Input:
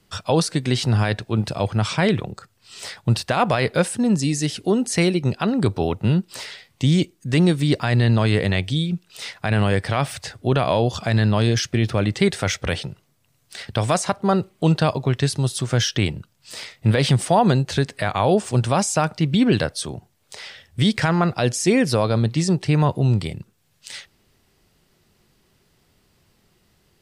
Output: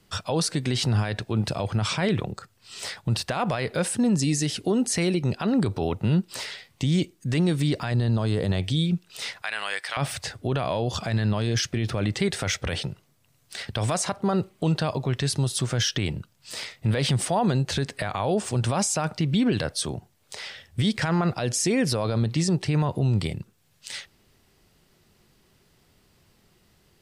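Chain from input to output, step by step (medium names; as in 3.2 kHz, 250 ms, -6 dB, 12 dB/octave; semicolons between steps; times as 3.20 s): 7.91–8.61 s: peaking EQ 2.2 kHz -11 dB 0.89 oct; 9.42–9.97 s: high-pass 1.3 kHz 12 dB/octave; peak limiter -15 dBFS, peak gain reduction 8.5 dB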